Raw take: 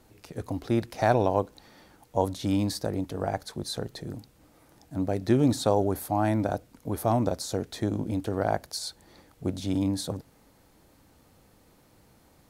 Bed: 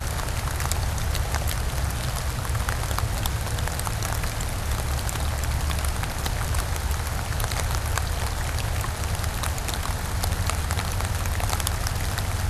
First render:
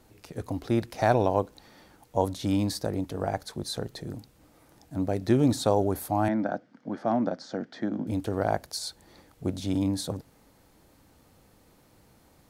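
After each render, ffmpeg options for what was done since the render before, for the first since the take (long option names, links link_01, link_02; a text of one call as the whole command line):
ffmpeg -i in.wav -filter_complex "[0:a]asettb=1/sr,asplit=3[link_01][link_02][link_03];[link_01]atrim=end=6.284[link_04];[link_02]atrim=start=6.28:end=8.07,asetpts=PTS-STARTPTS,afade=type=in:duration=0.004:curve=qsin,afade=type=out:start_time=1.786:duration=0.004:curve=qsin,highpass=frequency=170:width=0.5412,highpass=frequency=170:width=1.3066,equalizer=frequency=230:width_type=q:width=4:gain=3,equalizer=frequency=420:width_type=q:width=4:gain=-8,equalizer=frequency=1000:width_type=q:width=4:gain=-5,equalizer=frequency=1600:width_type=q:width=4:gain=5,equalizer=frequency=2600:width_type=q:width=4:gain=-8,equalizer=frequency=3900:width_type=q:width=4:gain=-9,lowpass=frequency=4500:width=0.5412,lowpass=frequency=4500:width=1.3066[link_05];[link_03]atrim=start=8.066[link_06];[link_04][link_05]acrossfade=duration=0.004:curve1=hsin:curve2=qsin[link_07];[link_07][link_06]acrossfade=duration=0.004:curve1=qsin:curve2=hsin" out.wav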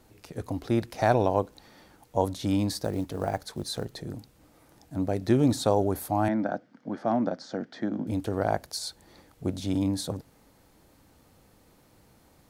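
ffmpeg -i in.wav -filter_complex "[0:a]asettb=1/sr,asplit=3[link_01][link_02][link_03];[link_01]atrim=end=2.784[link_04];[link_02]atrim=start=2.78:end=3.85,asetpts=PTS-STARTPTS,afade=type=in:duration=0.004:curve=qsin,afade=type=out:start_time=1.066:duration=0.004:curve=qsin,acrusher=bits=7:mode=log:mix=0:aa=0.000001[link_05];[link_03]atrim=start=3.846[link_06];[link_04][link_05]acrossfade=duration=0.004:curve1=hsin:curve2=qsin[link_07];[link_07][link_06]acrossfade=duration=0.004:curve1=qsin:curve2=hsin" out.wav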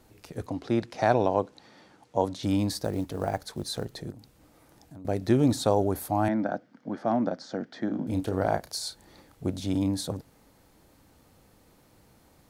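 ffmpeg -i in.wav -filter_complex "[0:a]asettb=1/sr,asplit=3[link_01][link_02][link_03];[link_01]atrim=end=0.464[link_04];[link_02]atrim=start=0.46:end=2.43,asetpts=PTS-STARTPTS,afade=type=in:duration=0.004:curve=qsin,afade=type=out:start_time=1.966:duration=0.004:curve=qsin,highpass=120,lowpass=6900[link_05];[link_03]atrim=start=2.426[link_06];[link_04][link_05]acrossfade=duration=0.004:curve1=hsin:curve2=qsin[link_07];[link_07][link_06]acrossfade=duration=0.004:curve1=qsin:curve2=hsin,asettb=1/sr,asplit=3[link_08][link_09][link_10];[link_08]atrim=end=4.104[link_11];[link_09]atrim=start=4.1:end=5.05,asetpts=PTS-STARTPTS,afade=type=in:duration=0.004:curve=qsin,afade=type=out:start_time=0.946:duration=0.004:curve=qsin,acompressor=threshold=-43dB:ratio=6:attack=3.2:release=140:knee=1:detection=peak[link_12];[link_10]atrim=start=5.046[link_13];[link_11][link_12]acrossfade=duration=0.004:curve1=hsin:curve2=qsin[link_14];[link_14][link_13]acrossfade=duration=0.004:curve1=qsin:curve2=hsin,asettb=1/sr,asplit=3[link_15][link_16][link_17];[link_15]atrim=end=7.854[link_18];[link_16]atrim=start=7.85:end=9.47,asetpts=PTS-STARTPTS,afade=type=in:duration=0.004:curve=qsin,afade=type=out:start_time=1.616:duration=0.004:curve=qsin,asplit=2[link_19][link_20];[link_20]adelay=32,volume=-9dB[link_21];[link_19][link_21]amix=inputs=2:normalize=0,atrim=end_sample=71442[link_22];[link_17]atrim=start=9.466[link_23];[link_18][link_22]acrossfade=duration=0.004:curve1=hsin:curve2=qsin[link_24];[link_24][link_23]acrossfade=duration=0.004:curve1=qsin:curve2=hsin" out.wav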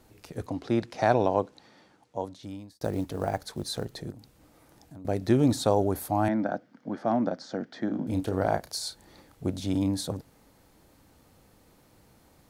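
ffmpeg -i in.wav -filter_complex "[0:a]asplit=2[link_01][link_02];[link_01]atrim=end=2.81,asetpts=PTS-STARTPTS,afade=type=out:start_time=1.38:duration=1.43[link_03];[link_02]atrim=start=2.81,asetpts=PTS-STARTPTS,afade=type=in:duration=0.004:curve=hsin[link_04];[link_03][link_04]concat=n=2:v=0:a=1" out.wav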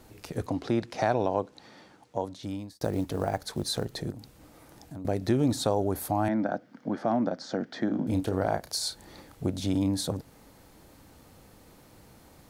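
ffmpeg -i in.wav -filter_complex "[0:a]asplit=2[link_01][link_02];[link_02]alimiter=limit=-19.5dB:level=0:latency=1:release=343,volume=-2dB[link_03];[link_01][link_03]amix=inputs=2:normalize=0,acompressor=threshold=-30dB:ratio=1.5" out.wav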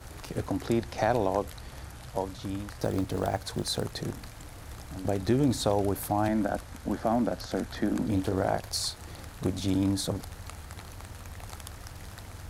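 ffmpeg -i in.wav -i bed.wav -filter_complex "[1:a]volume=-17.5dB[link_01];[0:a][link_01]amix=inputs=2:normalize=0" out.wav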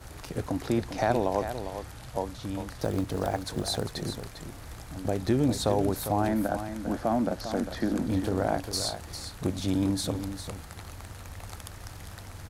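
ffmpeg -i in.wav -af "aecho=1:1:401:0.335" out.wav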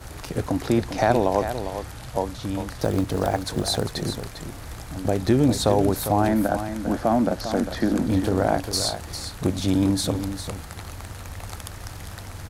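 ffmpeg -i in.wav -af "volume=6dB" out.wav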